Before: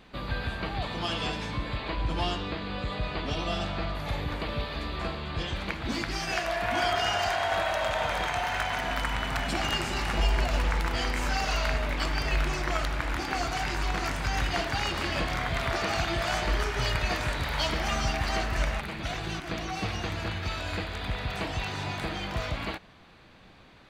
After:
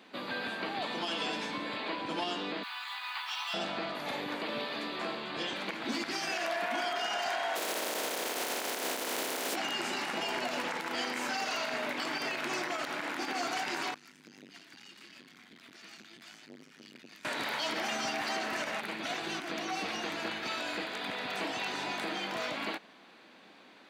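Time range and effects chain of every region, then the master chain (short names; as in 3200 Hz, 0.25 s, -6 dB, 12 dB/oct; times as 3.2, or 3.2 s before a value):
2.63–3.54 steep high-pass 830 Hz 72 dB/oct + companded quantiser 6-bit
7.55–9.54 spectral contrast lowered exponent 0.25 + bell 450 Hz +11 dB 1.5 oct
13.94–17.25 passive tone stack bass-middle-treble 6-0-2 + core saturation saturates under 330 Hz
whole clip: Chebyshev high-pass 240 Hz, order 3; notch 1200 Hz, Q 24; limiter -24.5 dBFS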